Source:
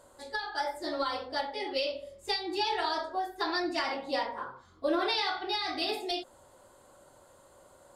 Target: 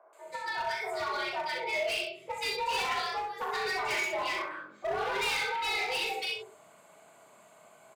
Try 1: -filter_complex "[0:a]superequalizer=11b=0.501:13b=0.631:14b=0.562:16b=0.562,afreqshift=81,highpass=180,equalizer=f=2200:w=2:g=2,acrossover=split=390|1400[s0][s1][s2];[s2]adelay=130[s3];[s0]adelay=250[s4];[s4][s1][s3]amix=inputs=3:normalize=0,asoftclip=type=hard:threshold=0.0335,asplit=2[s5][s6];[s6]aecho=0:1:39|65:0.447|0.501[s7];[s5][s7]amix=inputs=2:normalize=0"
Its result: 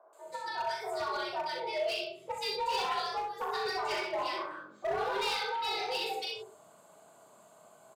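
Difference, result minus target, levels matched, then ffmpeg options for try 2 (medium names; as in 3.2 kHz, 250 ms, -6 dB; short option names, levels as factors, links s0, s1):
2 kHz band -4.0 dB
-filter_complex "[0:a]superequalizer=11b=0.501:13b=0.631:14b=0.562:16b=0.562,afreqshift=81,highpass=180,equalizer=f=2200:w=2:g=14,acrossover=split=390|1400[s0][s1][s2];[s2]adelay=130[s3];[s0]adelay=250[s4];[s4][s1][s3]amix=inputs=3:normalize=0,asoftclip=type=hard:threshold=0.0335,asplit=2[s5][s6];[s6]aecho=0:1:39|65:0.447|0.501[s7];[s5][s7]amix=inputs=2:normalize=0"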